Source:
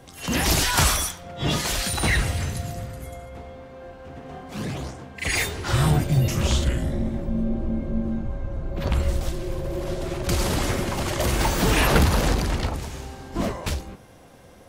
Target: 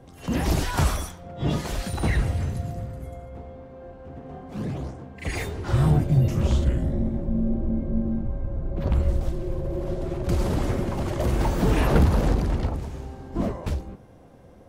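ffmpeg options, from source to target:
-af "tiltshelf=f=1.2k:g=7,volume=-6dB"

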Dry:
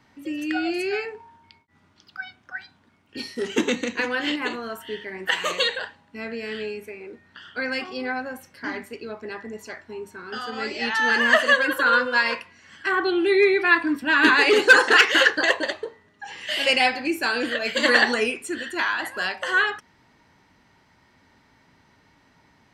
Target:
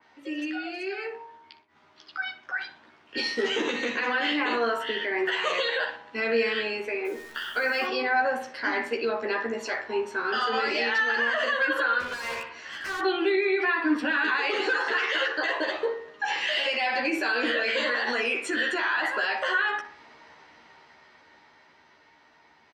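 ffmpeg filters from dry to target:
-filter_complex "[0:a]acrossover=split=350 6100:gain=0.141 1 0.0794[a][b][c];[a][b][c]amix=inputs=3:normalize=0,acompressor=threshold=-26dB:ratio=6,alimiter=level_in=4.5dB:limit=-24dB:level=0:latency=1:release=48,volume=-4.5dB,dynaudnorm=f=380:g=13:m=9dB,asettb=1/sr,asplit=3[d][e][f];[d]atrim=end=7.054[g];[e]atrim=start=7.05:end=7.86,asetpts=PTS-STARTPTS,afade=t=in:d=0.004:c=qsin,afade=t=out:st=0.806:d=0.004:c=qsin,acrusher=bits=9:dc=4:mix=0:aa=0.000001[h];[f]atrim=start=7.856[i];[g][h]acrossfade=d=0.004:c1=hsin:c2=qsin[j];[j][i]acrossfade=d=0.004:c1=qsin:c2=hsin,asettb=1/sr,asplit=3[k][l][m];[k]atrim=end=12.004[n];[l]atrim=start=12:end=13.01,asetpts=PTS-STARTPTS,afade=t=in:d=0.004:c=qsin,afade=t=out:st=1.006:d=0.004:c=qsin,asoftclip=type=hard:threshold=-32.5dB[o];[m]atrim=start=13.006[p];[n][o]acrossfade=d=0.004:c1=hsin:c2=qsin[q];[q][p]acrossfade=d=0.004:c1=qsin:c2=hsin,asplit=2[r][s];[s]adelay=13,volume=-3dB[t];[r][t]amix=inputs=2:normalize=0,asplit=2[u][v];[v]adelay=61,lowpass=f=1.9k:p=1,volume=-9dB,asplit=2[w][x];[x]adelay=61,lowpass=f=1.9k:p=1,volume=0.49,asplit=2[y][z];[z]adelay=61,lowpass=f=1.9k:p=1,volume=0.49,asplit=2[aa][ab];[ab]adelay=61,lowpass=f=1.9k:p=1,volume=0.49,asplit=2[ac][ad];[ad]adelay=61,lowpass=f=1.9k:p=1,volume=0.49,asplit=2[ae][af];[af]adelay=61,lowpass=f=1.9k:p=1,volume=0.49[ag];[u][w][y][aa][ac][ae][ag]amix=inputs=7:normalize=0,adynamicequalizer=threshold=0.0112:dfrequency=3300:dqfactor=0.7:tfrequency=3300:tqfactor=0.7:attack=5:release=100:ratio=0.375:range=1.5:mode=cutabove:tftype=highshelf"

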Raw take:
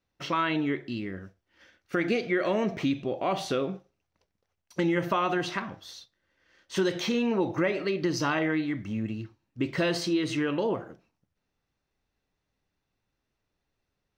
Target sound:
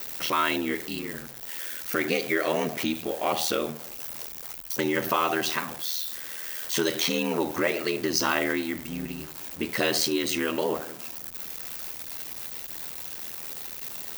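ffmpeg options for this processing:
-af "aeval=exprs='val(0)+0.5*0.01*sgn(val(0))':c=same,aeval=exprs='val(0)*sin(2*PI*40*n/s)':c=same,aemphasis=mode=production:type=bsi,volume=4.5dB"

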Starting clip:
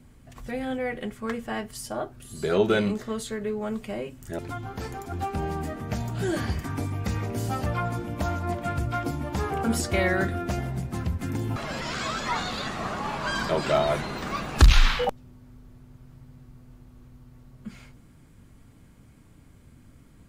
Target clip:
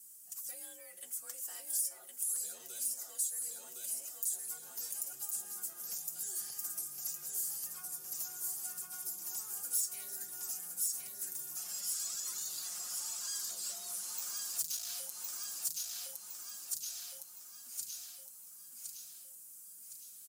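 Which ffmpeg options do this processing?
-filter_complex "[0:a]acrossover=split=370|3000[a][b][c];[b]acompressor=threshold=-31dB:ratio=6[d];[a][d][c]amix=inputs=3:normalize=0,aexciter=amount=7.4:drive=4:freq=5.2k,asplit=2[e][f];[f]aecho=0:1:1062|2124|3186|4248|5310|6372:0.631|0.278|0.122|0.0537|0.0236|0.0104[g];[e][g]amix=inputs=2:normalize=0,asoftclip=type=tanh:threshold=-15dB,bandreject=f=910:w=19,afreqshift=43,highpass=89,equalizer=f=2.1k:t=o:w=0.48:g=-7,aecho=1:1:5.6:0.73,acompressor=threshold=-31dB:ratio=3,aderivative,volume=-4.5dB"

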